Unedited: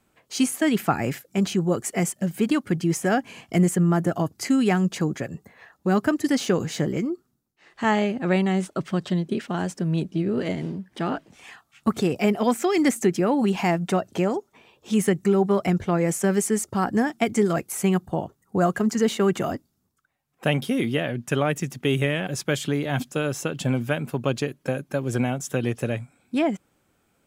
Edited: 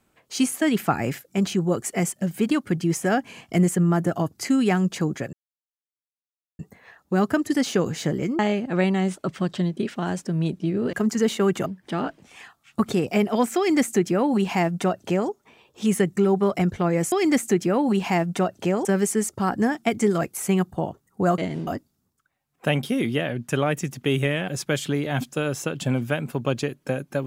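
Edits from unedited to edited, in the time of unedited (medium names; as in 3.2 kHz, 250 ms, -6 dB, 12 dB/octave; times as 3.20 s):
5.33 s: insert silence 1.26 s
7.13–7.91 s: delete
10.45–10.74 s: swap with 18.73–19.46 s
12.65–14.38 s: copy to 16.20 s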